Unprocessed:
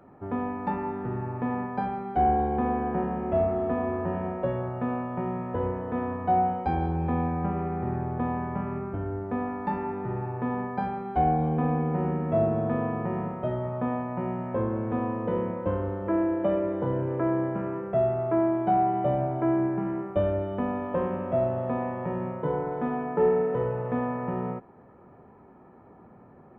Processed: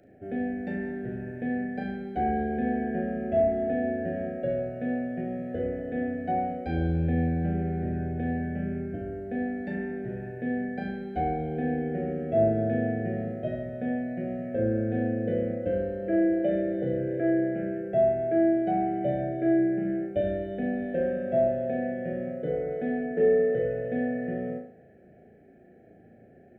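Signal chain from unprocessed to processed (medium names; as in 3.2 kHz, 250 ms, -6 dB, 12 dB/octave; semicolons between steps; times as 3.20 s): elliptic band-stop 700–1600 Hz, stop band 50 dB; bass shelf 330 Hz -4 dB; hum notches 50/100/150/200 Hz; flutter echo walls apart 6.2 m, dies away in 0.46 s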